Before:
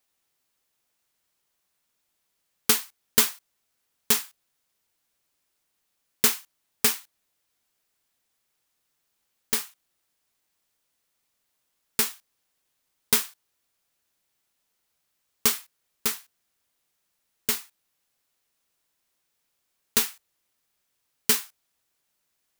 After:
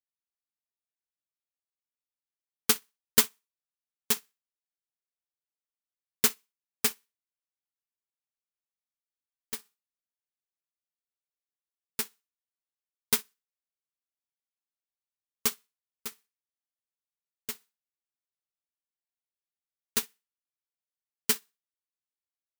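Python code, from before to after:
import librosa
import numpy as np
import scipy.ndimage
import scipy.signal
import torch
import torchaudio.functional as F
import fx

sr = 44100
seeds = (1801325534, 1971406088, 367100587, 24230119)

y = fx.room_flutter(x, sr, wall_m=10.7, rt60_s=0.28)
y = fx.upward_expand(y, sr, threshold_db=-33.0, expansion=2.5)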